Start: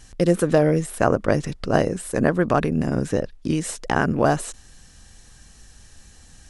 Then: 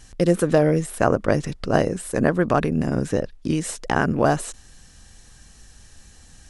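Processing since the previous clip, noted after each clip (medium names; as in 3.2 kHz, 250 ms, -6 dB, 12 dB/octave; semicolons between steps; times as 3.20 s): no audible change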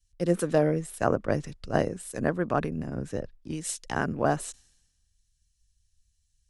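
three bands expanded up and down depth 100%; trim -8 dB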